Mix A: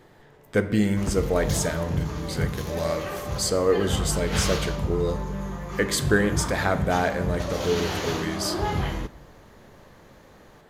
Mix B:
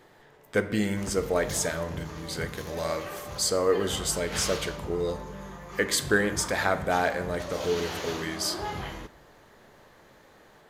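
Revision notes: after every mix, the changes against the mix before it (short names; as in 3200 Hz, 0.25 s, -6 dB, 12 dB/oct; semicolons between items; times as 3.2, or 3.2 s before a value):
background -4.5 dB; master: add low shelf 300 Hz -8.5 dB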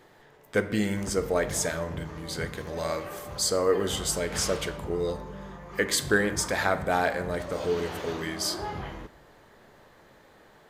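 background: add high shelf 3000 Hz -11.5 dB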